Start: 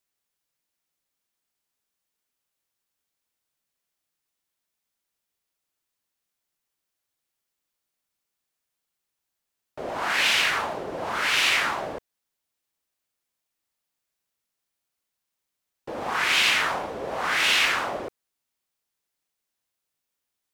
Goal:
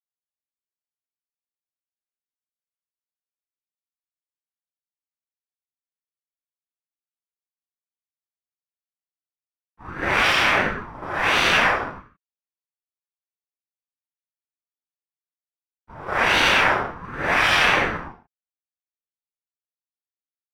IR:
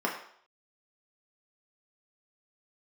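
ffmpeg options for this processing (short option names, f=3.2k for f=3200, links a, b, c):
-filter_complex "[0:a]agate=range=-33dB:threshold=-23dB:ratio=3:detection=peak[a];[1:a]atrim=start_sample=2205,afade=t=out:st=0.23:d=0.01,atrim=end_sample=10584[b];[a][b]afir=irnorm=-1:irlink=0,aeval=exprs='val(0)*sin(2*PI*490*n/s+490*0.35/1.4*sin(2*PI*1.4*n/s))':c=same"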